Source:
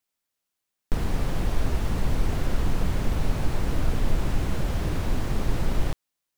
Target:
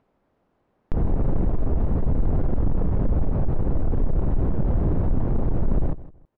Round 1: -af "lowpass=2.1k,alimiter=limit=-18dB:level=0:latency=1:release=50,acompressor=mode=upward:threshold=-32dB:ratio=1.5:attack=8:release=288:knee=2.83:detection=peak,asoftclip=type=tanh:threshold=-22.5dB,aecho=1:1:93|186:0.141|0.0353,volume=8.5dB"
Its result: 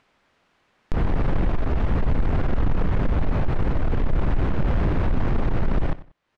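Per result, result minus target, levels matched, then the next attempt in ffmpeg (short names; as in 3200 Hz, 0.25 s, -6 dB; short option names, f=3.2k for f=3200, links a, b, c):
2000 Hz band +14.0 dB; echo 68 ms early
-af "lowpass=670,alimiter=limit=-18dB:level=0:latency=1:release=50,acompressor=mode=upward:threshold=-32dB:ratio=1.5:attack=8:release=288:knee=2.83:detection=peak,asoftclip=type=tanh:threshold=-22.5dB,aecho=1:1:93|186:0.141|0.0353,volume=8.5dB"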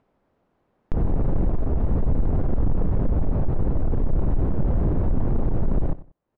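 echo 68 ms early
-af "lowpass=670,alimiter=limit=-18dB:level=0:latency=1:release=50,acompressor=mode=upward:threshold=-32dB:ratio=1.5:attack=8:release=288:knee=2.83:detection=peak,asoftclip=type=tanh:threshold=-22.5dB,aecho=1:1:161|322:0.141|0.0353,volume=8.5dB"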